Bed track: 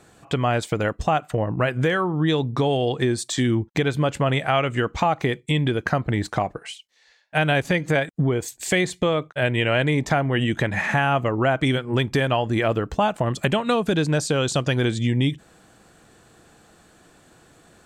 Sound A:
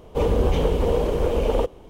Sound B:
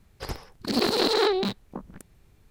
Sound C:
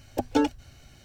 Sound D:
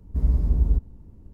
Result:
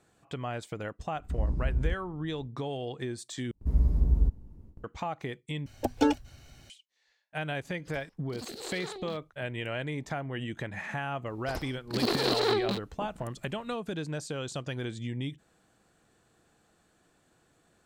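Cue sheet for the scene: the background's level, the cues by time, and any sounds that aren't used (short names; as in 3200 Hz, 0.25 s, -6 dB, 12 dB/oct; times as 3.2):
bed track -14 dB
1.15 add D -8.5 dB + downsampling 22050 Hz
3.51 replace with D -3.5 dB + gate with hold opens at -37 dBFS, closes at -44 dBFS
5.66 replace with C -1.5 dB
7.65 add B -17 dB + stepped notch 8.4 Hz 220–1900 Hz
11.26 add B -4.5 dB
not used: A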